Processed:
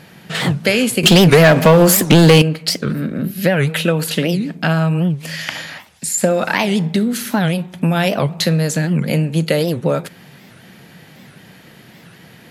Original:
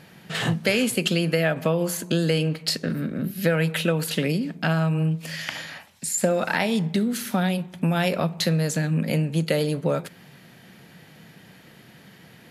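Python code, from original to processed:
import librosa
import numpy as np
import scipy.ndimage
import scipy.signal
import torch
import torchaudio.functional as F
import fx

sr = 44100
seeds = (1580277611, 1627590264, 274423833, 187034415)

y = fx.leveller(x, sr, passes=3, at=(1.03, 2.42))
y = fx.record_warp(y, sr, rpm=78.0, depth_cents=250.0)
y = F.gain(torch.from_numpy(y), 6.5).numpy()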